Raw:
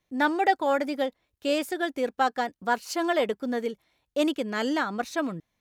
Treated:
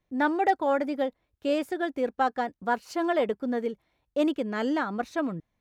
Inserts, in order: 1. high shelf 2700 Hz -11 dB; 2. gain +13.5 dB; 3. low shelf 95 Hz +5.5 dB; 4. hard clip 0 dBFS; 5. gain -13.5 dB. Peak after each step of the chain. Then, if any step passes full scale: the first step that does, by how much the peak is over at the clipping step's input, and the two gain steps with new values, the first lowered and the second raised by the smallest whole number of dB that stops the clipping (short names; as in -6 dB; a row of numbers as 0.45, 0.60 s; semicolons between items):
-11.0, +2.5, +3.0, 0.0, -13.5 dBFS; step 2, 3.0 dB; step 2 +10.5 dB, step 5 -10.5 dB